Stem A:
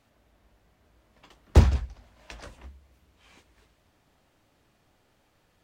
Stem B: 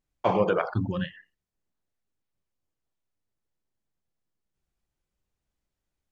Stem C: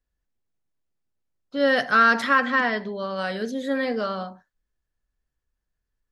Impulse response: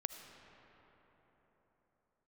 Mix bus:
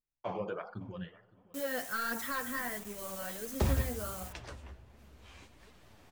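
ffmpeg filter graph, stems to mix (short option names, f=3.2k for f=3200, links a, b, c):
-filter_complex "[0:a]acompressor=mode=upward:threshold=-46dB:ratio=2.5,alimiter=limit=-15.5dB:level=0:latency=1:release=41,adelay=2050,volume=-2.5dB,asplit=2[a][b];[b]volume=-4dB[c];[1:a]volume=-11.5dB,asplit=3[d][e][f];[e]volume=-16.5dB[g];[f]volume=-20.5dB[h];[2:a]acrusher=bits=5:mix=0:aa=0.000001,aexciter=amount=3:drive=7.6:freq=6.2k,asoftclip=type=hard:threshold=-17dB,volume=-11dB[i];[3:a]atrim=start_sample=2205[j];[c][g]amix=inputs=2:normalize=0[k];[k][j]afir=irnorm=-1:irlink=0[l];[h]aecho=0:1:561|1122|1683|2244:1|0.23|0.0529|0.0122[m];[a][d][i][l][m]amix=inputs=5:normalize=0,flanger=delay=3.7:depth=8.7:regen=38:speed=1.4:shape=triangular"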